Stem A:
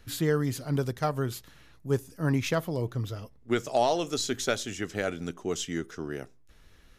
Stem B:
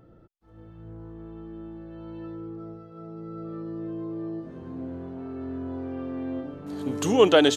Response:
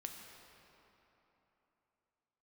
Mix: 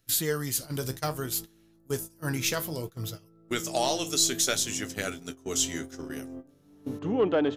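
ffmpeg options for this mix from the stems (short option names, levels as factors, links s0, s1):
-filter_complex "[0:a]flanger=delay=7.9:depth=8.5:regen=62:speed=0.63:shape=triangular,crystalizer=i=5.5:c=0,volume=0.891,asplit=2[s0][s1];[s1]volume=0.0708[s2];[1:a]lowpass=2100,equalizer=f=160:w=0.49:g=5,acontrast=34,volume=0.2,asplit=2[s3][s4];[s4]volume=0.106[s5];[2:a]atrim=start_sample=2205[s6];[s2][s5]amix=inputs=2:normalize=0[s7];[s7][s6]afir=irnorm=-1:irlink=0[s8];[s0][s3][s8]amix=inputs=3:normalize=0,agate=range=0.141:threshold=0.0178:ratio=16:detection=peak"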